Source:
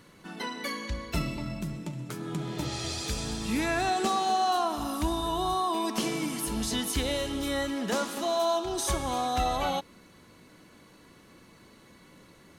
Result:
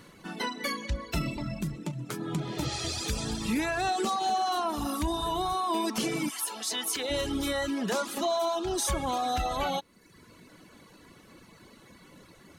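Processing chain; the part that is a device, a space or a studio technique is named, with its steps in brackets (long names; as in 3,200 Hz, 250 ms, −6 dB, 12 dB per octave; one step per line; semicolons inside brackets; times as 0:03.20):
soft clipper into limiter (soft clipping −17 dBFS, distortion −26 dB; brickwall limiter −23 dBFS, peak gain reduction 4.5 dB)
0:06.29–0:07.09: high-pass filter 830 Hz → 360 Hz 12 dB per octave
reverb reduction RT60 0.88 s
level +3.5 dB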